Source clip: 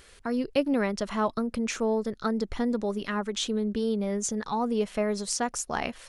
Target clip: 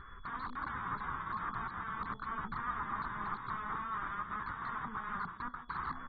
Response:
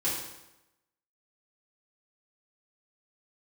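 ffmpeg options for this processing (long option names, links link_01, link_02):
-filter_complex "[0:a]aeval=exprs='val(0)+0.00501*sin(2*PI*3400*n/s)':channel_layout=same,asettb=1/sr,asplit=3[link_01][link_02][link_03];[link_01]atrim=end=1.004[link_04];[link_02]atrim=start=1:end=1.47,asetpts=PTS-STARTPTS,afade=type=in:duration=0.004:curve=qsin,afade=type=out:start_time=0.466:duration=0.004:curve=qsin,asplit=2[link_05][link_06];[link_06]adelay=37,volume=-2dB[link_07];[link_05][link_07]amix=inputs=2:normalize=0,atrim=end_sample=20727[link_08];[link_03]atrim=start=1.466[link_09];[link_04][link_08]acrossfade=duration=0.004:curve1=hsin:curve2=qsin[link_10];[link_10][link_09]acrossfade=duration=0.004:curve1=qsin:curve2=hsin,asettb=1/sr,asplit=3[link_11][link_12][link_13];[link_11]atrim=end=2.714[link_14];[link_12]atrim=start=2.71:end=3.16,asetpts=PTS-STARTPTS,afade=type=in:duration=0.004:curve=qsin,afade=type=out:start_time=0.446:duration=0.004:curve=qsin,acontrast=67[link_15];[link_13]atrim=start=3.156[link_16];[link_14][link_15]acrossfade=duration=0.004:curve1=hsin:curve2=qsin[link_17];[link_17][link_16]acrossfade=duration=0.004:curve1=qsin:curve2=hsin,aecho=1:1:157|314:0.0794|0.0222,asplit=3[link_18][link_19][link_20];[link_18]afade=type=out:start_time=5.24:duration=0.02[link_21];[link_19]acompressor=threshold=-35dB:ratio=10,afade=type=in:start_time=5.24:duration=0.02,afade=type=out:start_time=5.68:duration=0.02[link_22];[link_20]afade=type=in:start_time=5.68:duration=0.02[link_23];[link_21][link_22][link_23]amix=inputs=3:normalize=0,flanger=delay=7.5:depth=4.9:regen=73:speed=0.44:shape=sinusoidal,equalizer=frequency=4700:width=0.84:gain=-9.5,alimiter=level_in=4dB:limit=-24dB:level=0:latency=1:release=299,volume=-4dB,aeval=exprs='(mod(158*val(0)+1,2)-1)/158':channel_layout=same,firequalizer=gain_entry='entry(150,0);entry(560,-19);entry(1100,10);entry(1900,-6);entry(2700,-26);entry(7400,6);entry(11000,7)':delay=0.05:min_phase=1,volume=11dB" -ar 32000 -c:a aac -b:a 16k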